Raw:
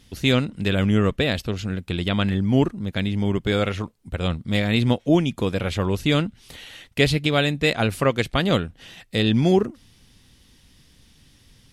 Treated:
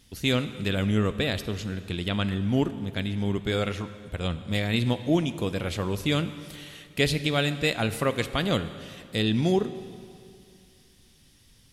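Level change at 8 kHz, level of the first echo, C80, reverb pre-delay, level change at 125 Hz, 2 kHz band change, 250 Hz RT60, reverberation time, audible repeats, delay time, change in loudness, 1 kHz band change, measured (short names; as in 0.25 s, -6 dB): -1.0 dB, none, 13.5 dB, 7 ms, -5.0 dB, -4.5 dB, 2.4 s, 2.4 s, none, none, -5.0 dB, -5.0 dB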